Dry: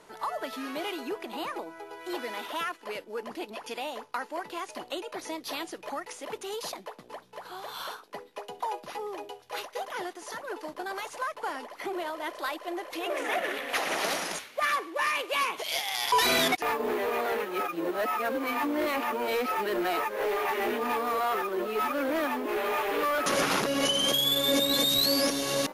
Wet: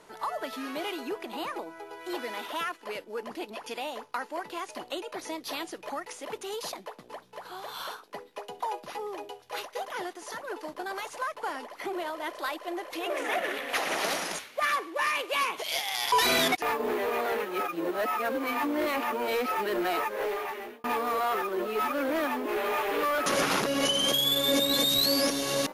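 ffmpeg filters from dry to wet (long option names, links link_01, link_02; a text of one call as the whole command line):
ffmpeg -i in.wav -filter_complex "[0:a]asplit=2[link_01][link_02];[link_01]atrim=end=20.84,asetpts=PTS-STARTPTS,afade=type=out:start_time=20.13:duration=0.71[link_03];[link_02]atrim=start=20.84,asetpts=PTS-STARTPTS,afade=type=in:duration=0.004:curve=hsin[link_04];[link_03][link_04]concat=n=2:v=0:a=1" out.wav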